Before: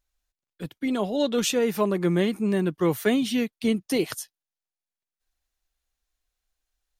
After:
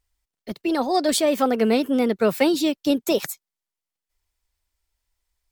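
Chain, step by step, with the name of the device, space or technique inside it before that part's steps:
nightcore (speed change +27%)
level +3.5 dB

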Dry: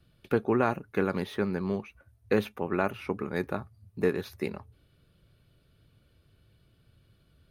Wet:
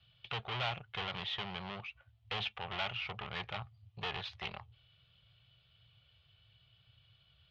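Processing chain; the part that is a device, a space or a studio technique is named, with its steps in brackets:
scooped metal amplifier (tube saturation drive 34 dB, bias 0.8; loudspeaker in its box 79–3,900 Hz, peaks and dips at 120 Hz +7 dB, 240 Hz −4 dB, 760 Hz +7 dB, 1,600 Hz −5 dB, 3,100 Hz +9 dB; guitar amp tone stack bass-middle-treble 10-0-10)
level +10.5 dB

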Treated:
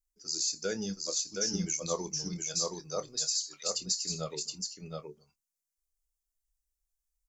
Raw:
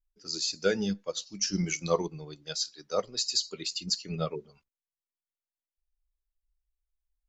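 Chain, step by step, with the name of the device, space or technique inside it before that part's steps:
over-bright horn tweeter (high shelf with overshoot 4,700 Hz +10.5 dB, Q 1.5; brickwall limiter −15.5 dBFS, peak gain reduction 9.5 dB)
0:03.24–0:03.75: Butterworth high-pass 710 Hz
double-tracking delay 27 ms −12.5 dB
single-tap delay 721 ms −3.5 dB
level −5.5 dB

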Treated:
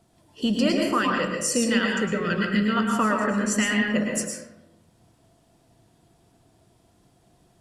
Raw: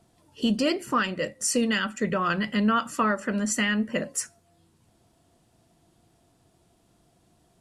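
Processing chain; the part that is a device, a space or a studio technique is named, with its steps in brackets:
0:01.99–0:02.77: flat-topped bell 890 Hz −12 dB 1.1 octaves
bathroom (convolution reverb RT60 0.95 s, pre-delay 101 ms, DRR 0 dB)

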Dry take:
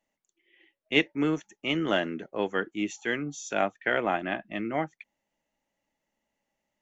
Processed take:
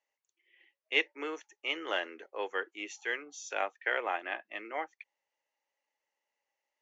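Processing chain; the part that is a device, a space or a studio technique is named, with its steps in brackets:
phone speaker on a table (loudspeaker in its box 470–6,400 Hz, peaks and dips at 650 Hz −8 dB, 1,400 Hz −3 dB, 3,500 Hz −4 dB)
level −2 dB

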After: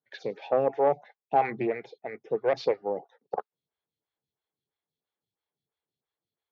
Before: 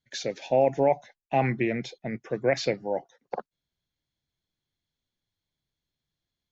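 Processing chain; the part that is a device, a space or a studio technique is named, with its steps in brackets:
vibe pedal into a guitar amplifier (phaser with staggered stages 3 Hz; tube saturation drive 16 dB, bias 0.35; loudspeaker in its box 110–4,500 Hz, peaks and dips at 260 Hz −3 dB, 440 Hz +9 dB, 820 Hz +7 dB, 1,200 Hz +5 dB)
level −1 dB

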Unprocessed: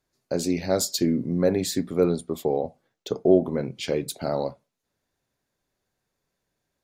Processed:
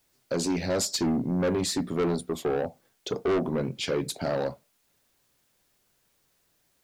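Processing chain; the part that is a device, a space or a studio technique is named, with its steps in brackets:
compact cassette (soft clipping −24 dBFS, distortion −6 dB; low-pass filter 9,800 Hz 12 dB per octave; tape wow and flutter; white noise bed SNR 41 dB)
level +2.5 dB

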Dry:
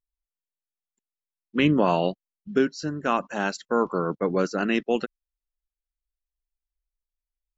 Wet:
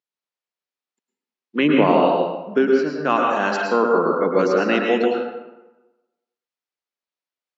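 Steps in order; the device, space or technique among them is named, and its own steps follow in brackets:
high-pass filter 110 Hz
supermarket ceiling speaker (band-pass filter 240–5,100 Hz; convolution reverb RT60 1.1 s, pre-delay 101 ms, DRR 0 dB)
0:01.58–0:03.10: low-pass filter 2,900 Hz 6 dB per octave
level +4.5 dB

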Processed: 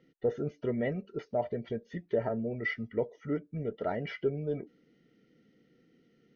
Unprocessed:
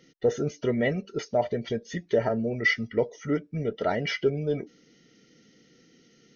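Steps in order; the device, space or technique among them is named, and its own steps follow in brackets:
phone in a pocket (low-pass filter 3,700 Hz 12 dB per octave; high-shelf EQ 2,400 Hz −10.5 dB)
level −5.5 dB

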